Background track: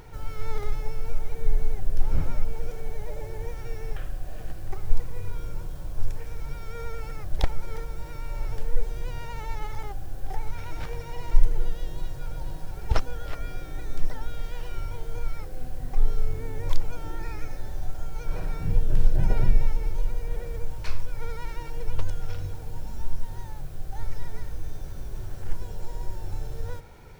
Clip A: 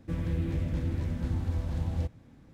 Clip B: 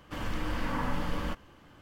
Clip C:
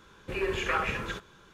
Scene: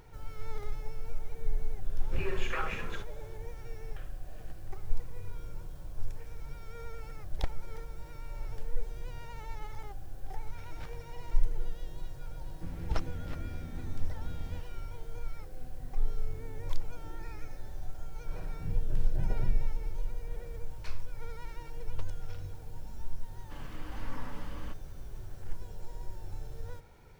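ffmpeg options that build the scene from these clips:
-filter_complex "[0:a]volume=0.376[s0];[3:a]atrim=end=1.53,asetpts=PTS-STARTPTS,volume=0.447,afade=t=in:d=0.004:c=hsin,afade=t=out:st=1.526:d=0.004:c=hsin,adelay=1840[s1];[1:a]atrim=end=2.53,asetpts=PTS-STARTPTS,volume=0.282,afade=t=in:d=0.004:c=hsin,afade=t=out:st=2.526:d=0.004:c=hsin,adelay=12530[s2];[2:a]atrim=end=1.81,asetpts=PTS-STARTPTS,volume=0.251,afade=t=in:d=0.004:c=hsin,afade=t=out:st=1.806:d=0.004:c=hsin,adelay=23390[s3];[s0][s1][s2][s3]amix=inputs=4:normalize=0"

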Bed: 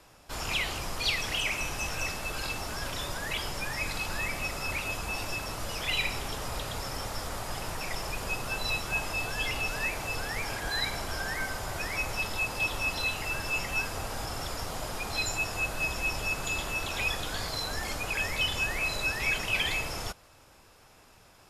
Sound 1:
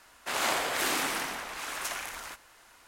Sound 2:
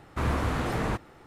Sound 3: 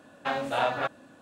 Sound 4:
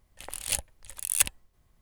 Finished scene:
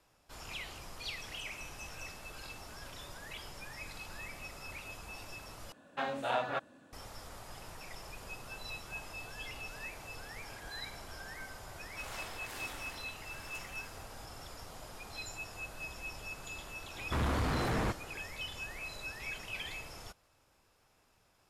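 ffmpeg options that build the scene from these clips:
-filter_complex "[0:a]volume=0.224[s0];[2:a]asoftclip=type=tanh:threshold=0.0398[s1];[s0]asplit=2[s2][s3];[s2]atrim=end=5.724[s4];[3:a]atrim=end=1.21,asetpts=PTS-STARTPTS,volume=0.473[s5];[s3]atrim=start=6.926[s6];[1:a]atrim=end=2.87,asetpts=PTS-STARTPTS,volume=0.133,afade=t=in:d=0.004:c=hsin,afade=t=out:st=2.866:d=0.004:c=hsin,adelay=515970S[s7];[s1]atrim=end=1.26,asetpts=PTS-STARTPTS,afade=t=in:d=0.004:c=hsin,afade=t=out:st=1.256:d=0.004:c=hsin,adelay=16950[s8];[s4][s5]acrossfade=d=0.004:c1=hsin:c2=hsin[s9];[s9][s6]acrossfade=d=0.004:c1=hsin:c2=hsin[s10];[s10][s7][s8]amix=inputs=3:normalize=0"

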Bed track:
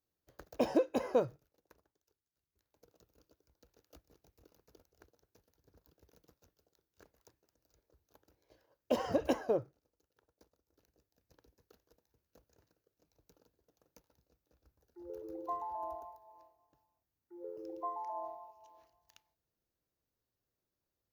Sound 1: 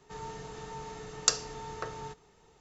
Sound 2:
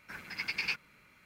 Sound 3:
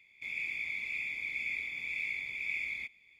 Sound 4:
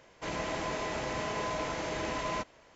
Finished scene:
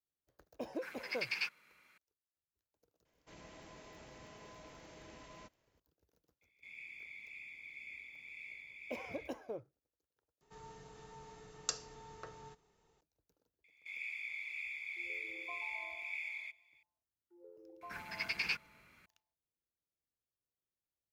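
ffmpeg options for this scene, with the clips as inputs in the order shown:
-filter_complex "[2:a]asplit=2[s0][s1];[3:a]asplit=2[s2][s3];[0:a]volume=0.251[s4];[s0]highpass=f=640:p=1[s5];[4:a]equalizer=f=1000:w=0.43:g=-5[s6];[s3]highpass=760[s7];[s1]equalizer=f=68:w=1.5:g=3[s8];[s4]asplit=2[s9][s10];[s9]atrim=end=10.414[s11];[1:a]atrim=end=2.6,asetpts=PTS-STARTPTS,volume=0.251[s12];[s10]atrim=start=13.006[s13];[s5]atrim=end=1.25,asetpts=PTS-STARTPTS,volume=0.668,afade=t=in:d=0.004:c=hsin,afade=t=out:st=1.246:d=0.004:c=hsin,adelay=730[s14];[s6]atrim=end=2.75,asetpts=PTS-STARTPTS,volume=0.133,afade=t=in:d=0.004:c=hsin,afade=t=out:st=2.746:d=0.004:c=hsin,adelay=134505S[s15];[s2]atrim=end=3.19,asetpts=PTS-STARTPTS,volume=0.2,afade=t=in:d=0.004:c=hsin,afade=t=out:st=3.186:d=0.004:c=hsin,adelay=6410[s16];[s7]atrim=end=3.19,asetpts=PTS-STARTPTS,volume=0.473,afade=t=in:d=0.004:c=hsin,afade=t=out:st=3.186:d=0.004:c=hsin,adelay=601524S[s17];[s8]atrim=end=1.25,asetpts=PTS-STARTPTS,volume=0.75,afade=t=in:d=0.004:c=hsin,afade=t=out:st=1.246:d=0.004:c=hsin,adelay=17810[s18];[s11][s12]acrossfade=d=0.004:c1=hsin:c2=hsin[s19];[s19][s13]acrossfade=d=0.004:c1=hsin:c2=hsin[s20];[s20][s14][s15][s16][s17][s18]amix=inputs=6:normalize=0"

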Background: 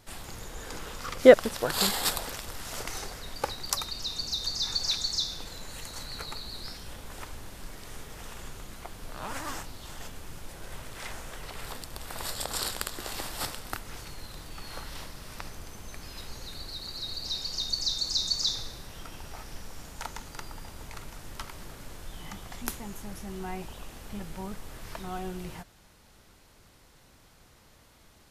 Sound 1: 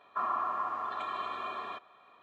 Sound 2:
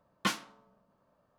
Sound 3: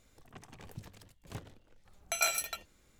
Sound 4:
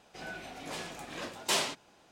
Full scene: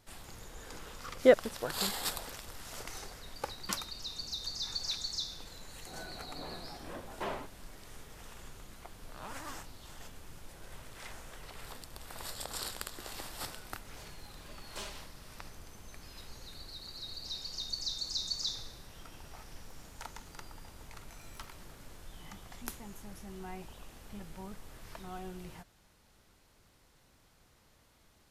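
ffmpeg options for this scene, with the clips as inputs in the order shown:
-filter_complex "[4:a]asplit=2[s0][s1];[0:a]volume=0.422[s2];[s0]lowpass=1300[s3];[s1]aecho=1:1:4.9:0.65[s4];[3:a]acompressor=threshold=0.00251:ratio=6:attack=3.2:release=140:knee=1:detection=peak[s5];[2:a]atrim=end=1.38,asetpts=PTS-STARTPTS,volume=0.316,afade=t=in:d=0.004:c=hsin,afade=t=out:st=1.376:d=0.004:c=hsin,adelay=3440[s6];[s3]atrim=end=2.11,asetpts=PTS-STARTPTS,volume=0.708,afade=t=in:d=0.004:c=hsin,afade=t=out:st=2.106:d=0.004:c=hsin,adelay=5720[s7];[s4]atrim=end=2.11,asetpts=PTS-STARTPTS,volume=0.141,afade=t=in:d=0.004:c=hsin,afade=t=out:st=2.106:d=0.004:c=hsin,adelay=13270[s8];[s5]atrim=end=2.99,asetpts=PTS-STARTPTS,volume=0.501,afade=t=in:d=0.004:c=hsin,afade=t=out:st=2.986:d=0.004:c=hsin,adelay=18990[s9];[s2][s6][s7][s8][s9]amix=inputs=5:normalize=0"

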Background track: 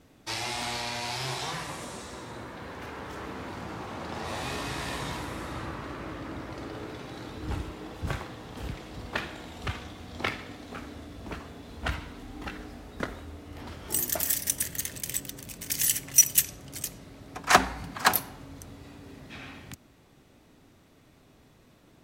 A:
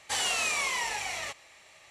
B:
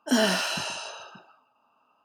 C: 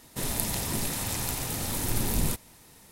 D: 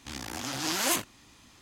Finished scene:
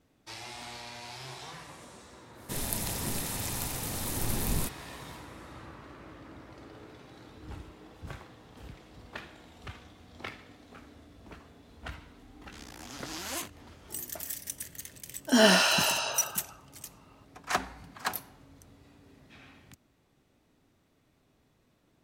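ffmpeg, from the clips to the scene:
-filter_complex "[0:a]volume=0.299[s0];[2:a]dynaudnorm=f=120:g=3:m=2.51[s1];[3:a]atrim=end=2.91,asetpts=PTS-STARTPTS,volume=0.668,afade=t=in:d=0.1,afade=t=out:st=2.81:d=0.1,adelay=2330[s2];[4:a]atrim=end=1.61,asetpts=PTS-STARTPTS,volume=0.335,afade=t=in:d=0.004:c=hsin,afade=t=out:st=1.606:d=0.004:c=hsin,adelay=12460[s3];[s1]atrim=end=2.04,asetpts=PTS-STARTPTS,volume=0.708,afade=t=in:d=0.004:c=hsin,afade=t=out:st=2.036:d=0.004:c=hsin,adelay=15210[s4];[s0][s2][s3][s4]amix=inputs=4:normalize=0"

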